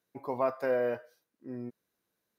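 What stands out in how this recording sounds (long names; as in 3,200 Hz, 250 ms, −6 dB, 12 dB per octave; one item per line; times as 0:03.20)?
background noise floor −84 dBFS
spectral slope −2.0 dB per octave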